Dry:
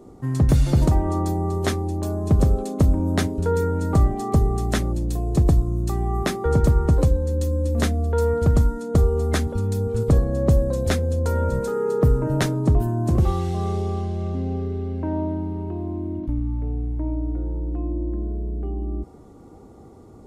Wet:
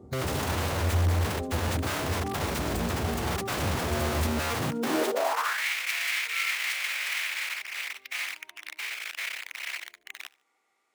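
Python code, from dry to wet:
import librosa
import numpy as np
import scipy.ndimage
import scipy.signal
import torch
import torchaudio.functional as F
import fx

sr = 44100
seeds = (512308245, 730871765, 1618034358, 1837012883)

p1 = fx.high_shelf(x, sr, hz=2100.0, db=-8.0)
p2 = (np.mod(10.0 ** (20.0 / 20.0) * p1 + 1.0, 2.0) - 1.0) / 10.0 ** (20.0 / 20.0)
p3 = fx.stretch_vocoder(p2, sr, factor=0.54)
p4 = fx.filter_sweep_highpass(p3, sr, from_hz=81.0, to_hz=2200.0, start_s=4.51, end_s=5.65, q=4.0)
p5 = p4 + fx.echo_feedback(p4, sr, ms=74, feedback_pct=34, wet_db=-23, dry=0)
y = p5 * librosa.db_to_amplitude(-4.0)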